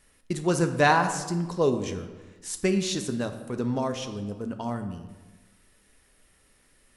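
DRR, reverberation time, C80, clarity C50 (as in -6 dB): 6.5 dB, 1.2 s, 11.0 dB, 9.5 dB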